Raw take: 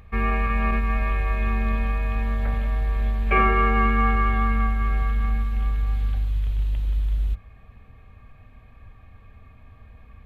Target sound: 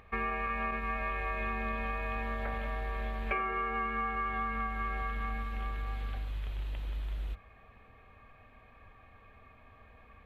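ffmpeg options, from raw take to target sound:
ffmpeg -i in.wav -af "bass=frequency=250:gain=-13,treble=frequency=4000:gain=-8,acompressor=threshold=-30dB:ratio=12" out.wav

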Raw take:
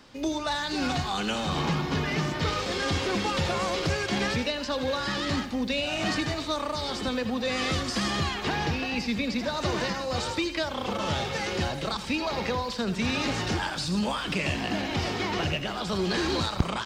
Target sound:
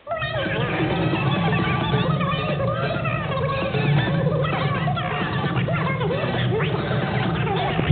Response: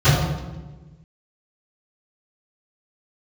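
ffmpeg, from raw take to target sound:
-filter_complex "[0:a]asetrate=93933,aresample=44100,asplit=2[link_01][link_02];[1:a]atrim=start_sample=2205,lowshelf=frequency=200:gain=11.5,adelay=71[link_03];[link_02][link_03]afir=irnorm=-1:irlink=0,volume=-33dB[link_04];[link_01][link_04]amix=inputs=2:normalize=0,volume=3.5dB" -ar 8000 -c:a pcm_alaw

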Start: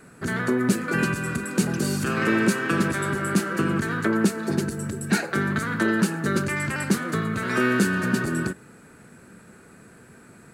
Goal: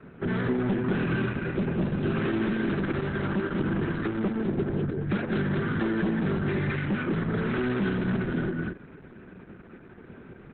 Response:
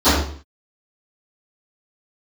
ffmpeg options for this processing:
-filter_complex "[0:a]acrossover=split=210[link_01][link_02];[link_01]acontrast=32[link_03];[link_03][link_02]amix=inputs=2:normalize=0,aecho=1:1:182|205:0.335|0.531,aresample=8000,asoftclip=type=tanh:threshold=-22dB,aresample=44100,equalizer=frequency=380:width=2.3:gain=7,acrossover=split=240[link_04][link_05];[link_05]acompressor=threshold=-26dB:ratio=5[link_06];[link_04][link_06]amix=inputs=2:normalize=0" -ar 48000 -c:a libopus -b:a 8k

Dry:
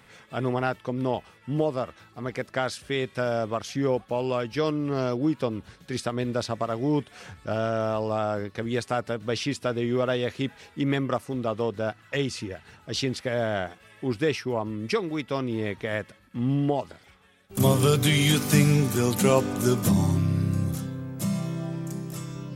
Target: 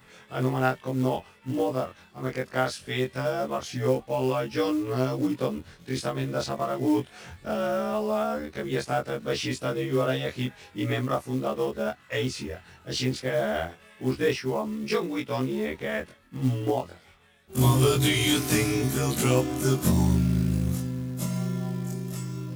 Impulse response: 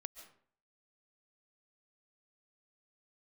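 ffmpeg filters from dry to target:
-af "afftfilt=real='re':imag='-im':win_size=2048:overlap=0.75,acrusher=bits=6:mode=log:mix=0:aa=0.000001,volume=4dB"

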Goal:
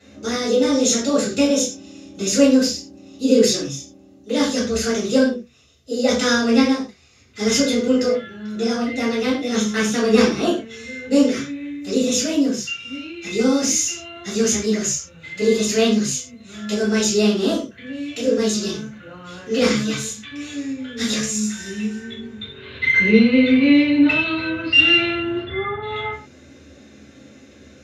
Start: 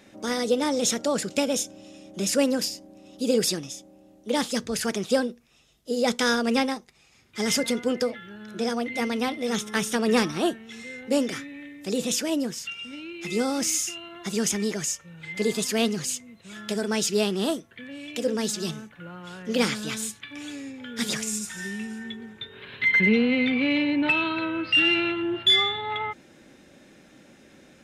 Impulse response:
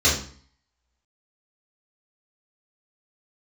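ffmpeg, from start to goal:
-filter_complex "[0:a]asplit=3[link_01][link_02][link_03];[link_01]afade=type=out:start_time=25.4:duration=0.02[link_04];[link_02]lowpass=frequency=1800:width=0.5412,lowpass=frequency=1800:width=1.3066,afade=type=in:start_time=25.4:duration=0.02,afade=type=out:start_time=25.81:duration=0.02[link_05];[link_03]afade=type=in:start_time=25.81:duration=0.02[link_06];[link_04][link_05][link_06]amix=inputs=3:normalize=0[link_07];[1:a]atrim=start_sample=2205,atrim=end_sample=6174[link_08];[link_07][link_08]afir=irnorm=-1:irlink=0,volume=-13dB"

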